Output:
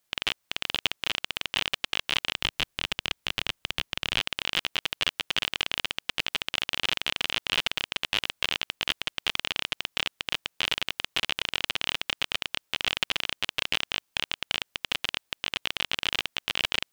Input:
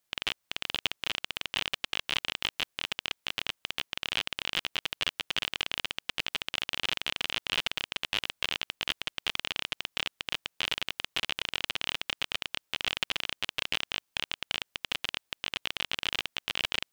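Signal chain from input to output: 2.35–4.2 low shelf 170 Hz +9.5 dB; gain +3.5 dB

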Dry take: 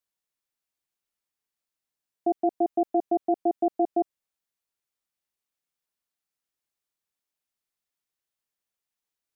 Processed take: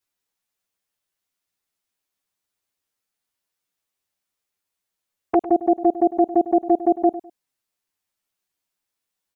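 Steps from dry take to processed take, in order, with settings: whole clip reversed; envelope flanger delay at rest 10.6 ms, full sweep at -22.5 dBFS; feedback echo 0.102 s, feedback 23%, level -15 dB; gain +8.5 dB

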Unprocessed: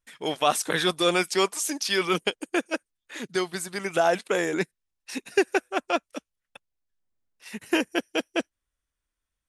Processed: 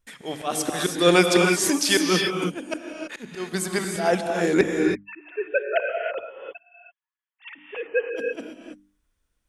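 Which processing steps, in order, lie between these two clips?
4.61–8.16 sine-wave speech; low shelf 490 Hz +7.5 dB; notches 50/100/150/200/250/300 Hz; auto swell 0.278 s; non-linear reverb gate 0.35 s rising, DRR 2 dB; gain +4.5 dB

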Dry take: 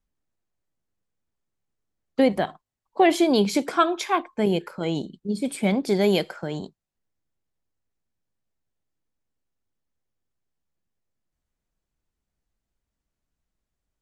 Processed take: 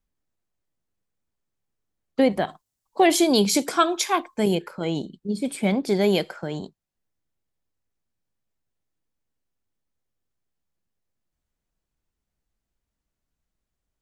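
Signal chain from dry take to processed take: 2.48–4.55 tone controls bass +1 dB, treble +11 dB

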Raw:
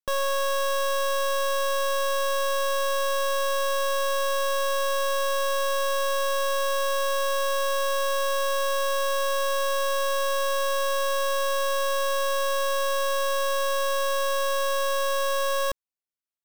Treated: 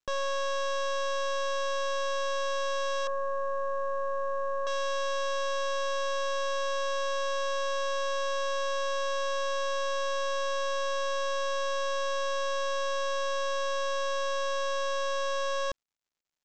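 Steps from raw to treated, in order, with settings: 3.07–4.67 inverse Chebyshev low-pass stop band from 2900 Hz, stop band 40 dB; gain -5 dB; µ-law 128 kbps 16000 Hz

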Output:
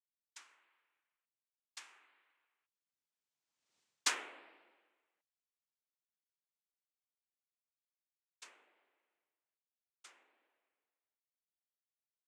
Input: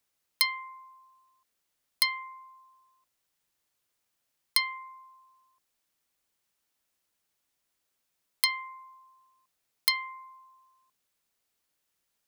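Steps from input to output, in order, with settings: Doppler pass-by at 3.77, 43 m/s, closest 4.2 m; noise vocoder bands 4; gain +2.5 dB

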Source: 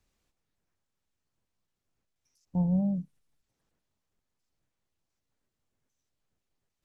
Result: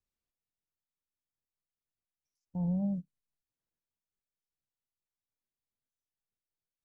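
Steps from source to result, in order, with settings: limiter -25 dBFS, peak gain reduction 6 dB; upward expander 2.5:1, over -40 dBFS

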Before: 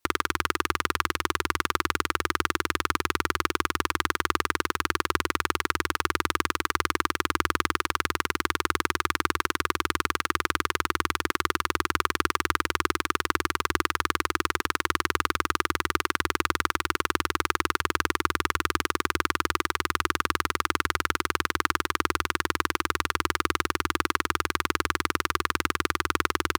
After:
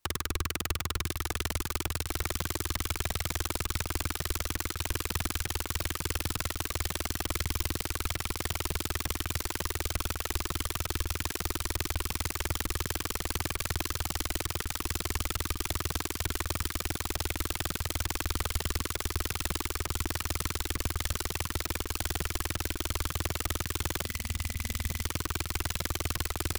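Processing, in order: spectral gain 24.05–25.02, 240–2000 Hz -18 dB; wrapped overs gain 22 dB; low shelf 98 Hz +11.5 dB; on a send: thin delay 1.018 s, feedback 61%, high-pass 3600 Hz, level -8.5 dB; on the sum: crackling interface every 0.18 s, samples 256, zero, from 0.61

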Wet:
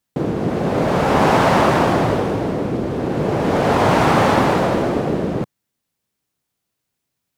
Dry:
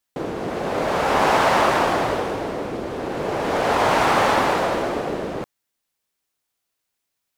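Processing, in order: bell 140 Hz +13 dB 2.6 oct

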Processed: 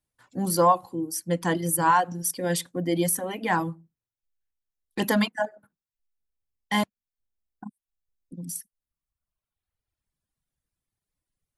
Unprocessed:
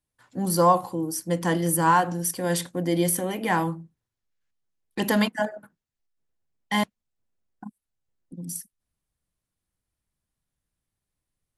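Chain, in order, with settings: reverb removal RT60 1.5 s

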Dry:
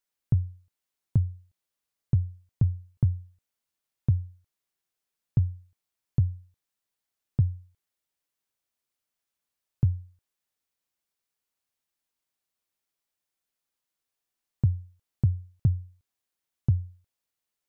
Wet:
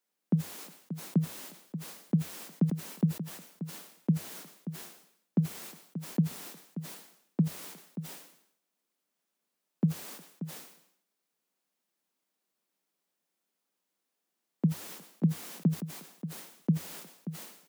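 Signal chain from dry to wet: steep high-pass 160 Hz 96 dB/oct; tilt shelf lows +4.5 dB, about 740 Hz; echo 0.582 s -12 dB; sustainer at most 83 dB/s; gain +5.5 dB

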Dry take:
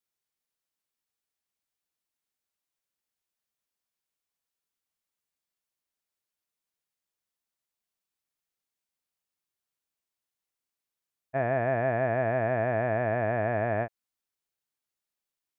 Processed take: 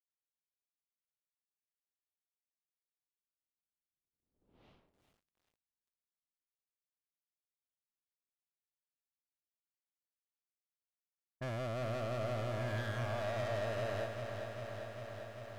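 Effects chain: Doppler pass-by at 4.65, 16 m/s, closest 2.2 m; in parallel at +3 dB: limiter -59 dBFS, peak gain reduction 9 dB; on the sum: phaser stages 4, 0.27 Hz, lowest notch 200–1500 Hz; sample leveller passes 5; low-pass opened by the level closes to 300 Hz, open at -55.5 dBFS; lo-fi delay 0.397 s, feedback 80%, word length 14-bit, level -7 dB; gain +13.5 dB

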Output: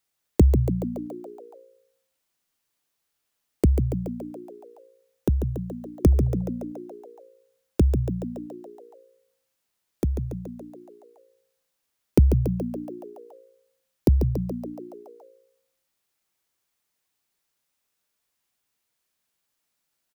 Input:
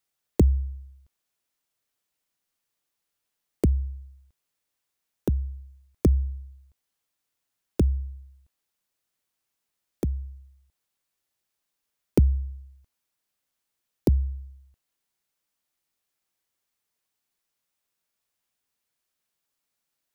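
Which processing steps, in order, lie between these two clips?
frequency-shifting echo 0.141 s, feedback 63%, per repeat +58 Hz, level -8 dB; gain +2.5 dB

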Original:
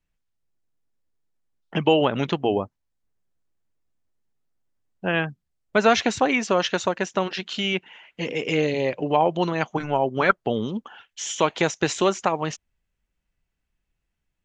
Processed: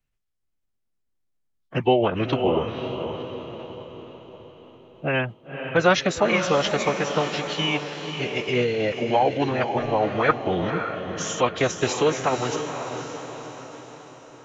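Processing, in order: diffused feedback echo 0.525 s, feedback 52%, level -7 dB; formant-preserving pitch shift -4 st

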